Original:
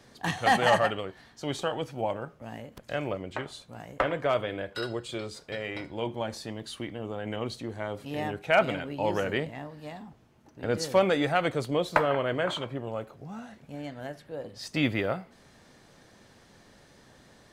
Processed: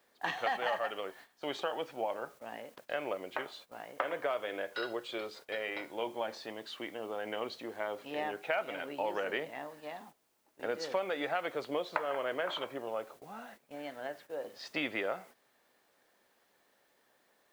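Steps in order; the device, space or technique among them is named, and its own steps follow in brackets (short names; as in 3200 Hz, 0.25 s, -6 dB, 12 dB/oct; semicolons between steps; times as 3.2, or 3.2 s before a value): baby monitor (BPF 430–3600 Hz; compressor, threshold -30 dBFS, peak gain reduction 12.5 dB; white noise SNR 27 dB; gate -53 dBFS, range -12 dB)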